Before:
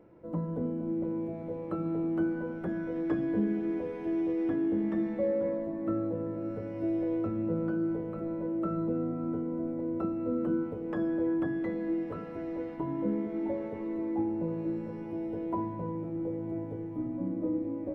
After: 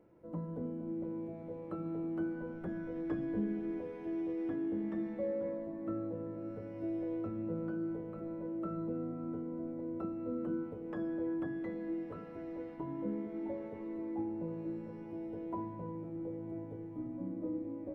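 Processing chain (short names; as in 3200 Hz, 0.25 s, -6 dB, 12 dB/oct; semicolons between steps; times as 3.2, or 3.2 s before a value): 2.41–3.81 low shelf 70 Hz +10 dB; gain -7 dB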